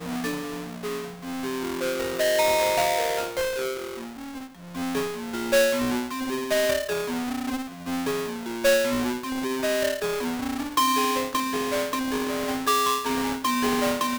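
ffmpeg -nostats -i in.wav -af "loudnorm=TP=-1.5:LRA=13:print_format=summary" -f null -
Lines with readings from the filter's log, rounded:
Input Integrated:    -25.4 LUFS
Input True Peak:     -12.6 dBTP
Input LRA:             1.4 LU
Input Threshold:     -35.6 LUFS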